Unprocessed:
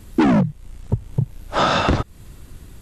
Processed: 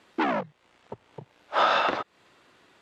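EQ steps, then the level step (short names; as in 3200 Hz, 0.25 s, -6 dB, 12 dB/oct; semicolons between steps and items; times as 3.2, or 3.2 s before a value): BPF 560–3500 Hz; -2.5 dB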